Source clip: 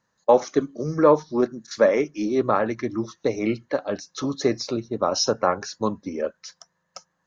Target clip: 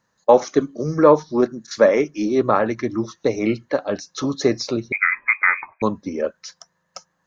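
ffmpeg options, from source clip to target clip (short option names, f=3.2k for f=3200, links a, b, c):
-filter_complex "[0:a]asettb=1/sr,asplit=3[a][b][c];[a]atrim=end=4.924[d];[b]atrim=start=4.92:end=5.82,asetpts=PTS-STARTPTS,afade=t=in:d=0.004:c=qsin,afade=t=out:st=0.896:d=0.004:c=qsin,lowpass=f=2.2k:t=q:w=0.5098,lowpass=f=2.2k:t=q:w=0.6013,lowpass=f=2.2k:t=q:w=0.9,lowpass=f=2.2k:t=q:w=2.563,afreqshift=-2600[e];[c]atrim=start=5.816[f];[d][e]acrossfade=d=0.004:c1=hsin:c2=qsin[g];[g][f]acrossfade=d=0.004:c1=qsin:c2=hsin,volume=3.5dB"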